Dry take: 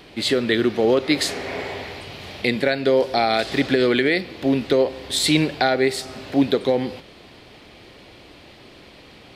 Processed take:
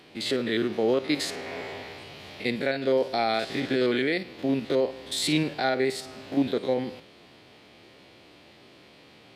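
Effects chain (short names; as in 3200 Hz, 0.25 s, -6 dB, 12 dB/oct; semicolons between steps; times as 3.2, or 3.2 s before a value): stepped spectrum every 50 ms; HPF 100 Hz; gain -5.5 dB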